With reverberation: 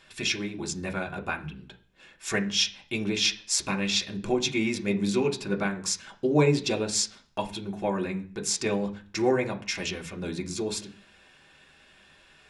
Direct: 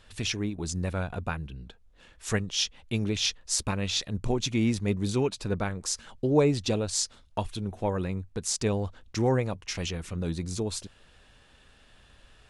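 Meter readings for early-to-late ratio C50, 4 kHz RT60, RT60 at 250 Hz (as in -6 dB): 15.0 dB, 0.50 s, 0.55 s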